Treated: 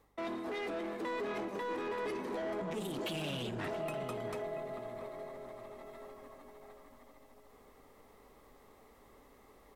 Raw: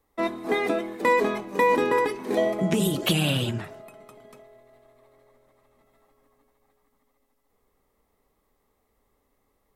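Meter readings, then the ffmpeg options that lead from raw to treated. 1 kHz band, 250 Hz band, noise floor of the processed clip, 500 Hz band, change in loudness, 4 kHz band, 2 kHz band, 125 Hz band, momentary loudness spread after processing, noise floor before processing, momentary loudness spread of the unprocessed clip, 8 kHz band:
-14.0 dB, -13.0 dB, -62 dBFS, -12.0 dB, -15.0 dB, -14.0 dB, -14.0 dB, -15.5 dB, 16 LU, -72 dBFS, 8 LU, -16.5 dB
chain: -filter_complex "[0:a]lowshelf=f=460:g=8,acrossover=split=210[s0][s1];[s1]acontrast=31[s2];[s0][s2]amix=inputs=2:normalize=0,alimiter=limit=0.168:level=0:latency=1,areverse,acompressor=threshold=0.0126:ratio=5,areverse,asoftclip=type=hard:threshold=0.015,asplit=2[s3][s4];[s4]adelay=681,lowpass=f=840:p=1,volume=0.531,asplit=2[s5][s6];[s6]adelay=681,lowpass=f=840:p=1,volume=0.4,asplit=2[s7][s8];[s8]adelay=681,lowpass=f=840:p=1,volume=0.4,asplit=2[s9][s10];[s10]adelay=681,lowpass=f=840:p=1,volume=0.4,asplit=2[s11][s12];[s12]adelay=681,lowpass=f=840:p=1,volume=0.4[s13];[s3][s5][s7][s9][s11][s13]amix=inputs=6:normalize=0,asplit=2[s14][s15];[s15]highpass=f=720:p=1,volume=2.24,asoftclip=type=tanh:threshold=0.0266[s16];[s14][s16]amix=inputs=2:normalize=0,lowpass=f=5500:p=1,volume=0.501,aeval=exprs='val(0)+0.000178*(sin(2*PI*50*n/s)+sin(2*PI*2*50*n/s)/2+sin(2*PI*3*50*n/s)/3+sin(2*PI*4*50*n/s)/4+sin(2*PI*5*50*n/s)/5)':c=same,volume=1.33"

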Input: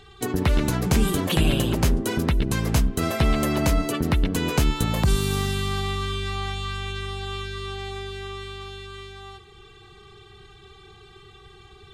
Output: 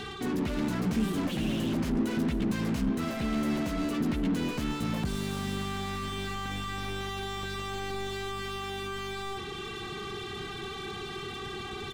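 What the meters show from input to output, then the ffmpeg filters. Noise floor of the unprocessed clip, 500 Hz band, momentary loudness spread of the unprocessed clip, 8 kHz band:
-49 dBFS, -6.5 dB, 13 LU, -11.0 dB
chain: -filter_complex "[0:a]areverse,acompressor=threshold=0.0251:ratio=5,areverse,asplit=2[s0][s1];[s1]highpass=f=720:p=1,volume=50.1,asoftclip=type=tanh:threshold=0.075[s2];[s0][s2]amix=inputs=2:normalize=0,lowpass=f=3600:p=1,volume=0.501,firequalizer=gain_entry='entry(120,0);entry(220,8);entry(400,-5);entry(810,-8)':delay=0.05:min_phase=1"

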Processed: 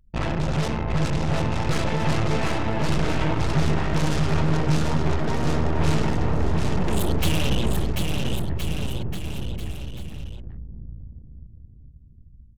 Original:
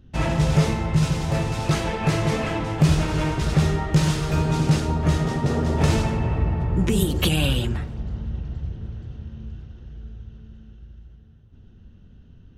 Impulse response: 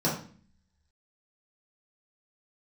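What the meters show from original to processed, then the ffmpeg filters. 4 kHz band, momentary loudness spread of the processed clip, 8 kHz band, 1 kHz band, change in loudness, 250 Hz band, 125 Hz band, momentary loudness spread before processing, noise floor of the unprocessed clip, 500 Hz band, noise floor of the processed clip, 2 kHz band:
-1.5 dB, 14 LU, -2.5 dB, +0.5 dB, -2.5 dB, -2.0 dB, -2.5 dB, 17 LU, -49 dBFS, -0.5 dB, -48 dBFS, 0.0 dB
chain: -filter_complex "[0:a]aeval=exprs='0.501*(cos(1*acos(clip(val(0)/0.501,-1,1)))-cos(1*PI/2))+0.02*(cos(5*acos(clip(val(0)/0.501,-1,1)))-cos(5*PI/2))+0.112*(cos(6*acos(clip(val(0)/0.501,-1,1)))-cos(6*PI/2))+0.0355*(cos(7*acos(clip(val(0)/0.501,-1,1)))-cos(7*PI/2))':c=same,asoftclip=type=tanh:threshold=0.0944,anlmdn=6.31,asplit=2[s0][s1];[s1]aecho=0:1:740|1369|1904|2358|2744:0.631|0.398|0.251|0.158|0.1[s2];[s0][s2]amix=inputs=2:normalize=0,volume=1.41"

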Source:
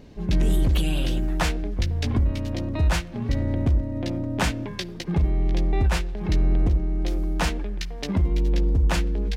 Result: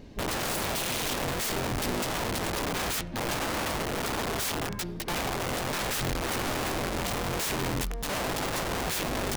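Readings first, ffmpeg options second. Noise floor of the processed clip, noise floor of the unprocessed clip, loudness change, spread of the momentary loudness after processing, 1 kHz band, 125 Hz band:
-36 dBFS, -36 dBFS, -5.0 dB, 2 LU, +3.5 dB, -12.0 dB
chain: -af "aeval=exprs='(mod(18.8*val(0)+1,2)-1)/18.8':c=same,bandreject=f=74.09:t=h:w=4,bandreject=f=148.18:t=h:w=4,bandreject=f=222.27:t=h:w=4,bandreject=f=296.36:t=h:w=4,bandreject=f=370.45:t=h:w=4,bandreject=f=444.54:t=h:w=4,bandreject=f=518.63:t=h:w=4,bandreject=f=592.72:t=h:w=4,bandreject=f=666.81:t=h:w=4,bandreject=f=740.9:t=h:w=4,bandreject=f=814.99:t=h:w=4,bandreject=f=889.08:t=h:w=4,bandreject=f=963.17:t=h:w=4,bandreject=f=1037.26:t=h:w=4,bandreject=f=1111.35:t=h:w=4,bandreject=f=1185.44:t=h:w=4,bandreject=f=1259.53:t=h:w=4,bandreject=f=1333.62:t=h:w=4,bandreject=f=1407.71:t=h:w=4,bandreject=f=1481.8:t=h:w=4"

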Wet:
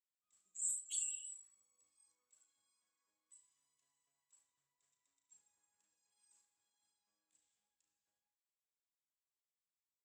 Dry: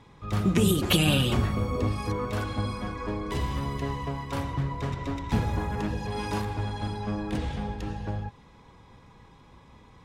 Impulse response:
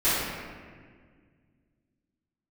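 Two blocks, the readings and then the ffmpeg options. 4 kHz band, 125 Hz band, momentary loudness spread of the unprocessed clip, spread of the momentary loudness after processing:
-29.0 dB, under -40 dB, 11 LU, 16 LU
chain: -filter_complex "[0:a]bandpass=f=7700:t=q:w=11:csg=0,afftdn=nr=24:nf=-46,asplit=2[s0][s1];[s1]aecho=0:1:35|71:0.422|0.224[s2];[s0][s2]amix=inputs=2:normalize=0,volume=1.88"

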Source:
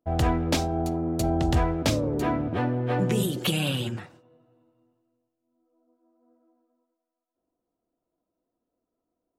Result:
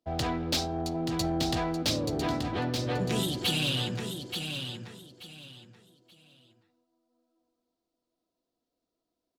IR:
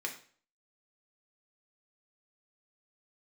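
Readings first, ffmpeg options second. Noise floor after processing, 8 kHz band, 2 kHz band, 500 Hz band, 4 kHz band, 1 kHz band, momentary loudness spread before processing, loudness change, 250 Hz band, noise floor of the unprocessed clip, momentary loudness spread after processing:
-85 dBFS, -0.5 dB, -1.5 dB, -4.5 dB, +3.5 dB, -4.0 dB, 4 LU, -4.0 dB, -4.5 dB, -85 dBFS, 18 LU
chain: -filter_complex "[0:a]equalizer=f=4300:w=1.1:g=13.5,acrossover=split=120[s0][s1];[s0]acompressor=threshold=0.0178:ratio=6[s2];[s1]asoftclip=type=tanh:threshold=0.126[s3];[s2][s3]amix=inputs=2:normalize=0,aecho=1:1:880|1760|2640:0.473|0.114|0.0273,volume=0.596"

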